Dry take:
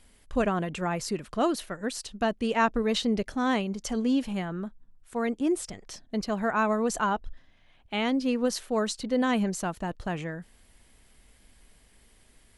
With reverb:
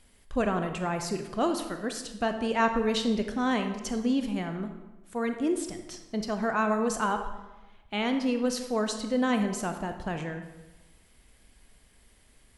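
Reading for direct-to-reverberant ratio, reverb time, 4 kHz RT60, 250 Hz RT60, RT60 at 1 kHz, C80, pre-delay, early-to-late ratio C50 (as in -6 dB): 6.5 dB, 1.1 s, 0.80 s, 1.2 s, 1.1 s, 10.0 dB, 24 ms, 8.0 dB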